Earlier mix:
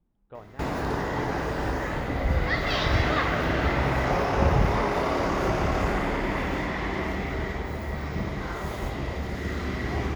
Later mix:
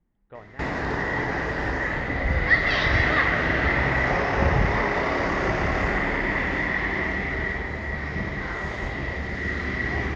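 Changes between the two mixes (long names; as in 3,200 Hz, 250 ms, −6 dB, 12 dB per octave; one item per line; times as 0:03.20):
background: add low-pass filter 6,400 Hz 24 dB per octave
master: add parametric band 1,900 Hz +11.5 dB 0.37 octaves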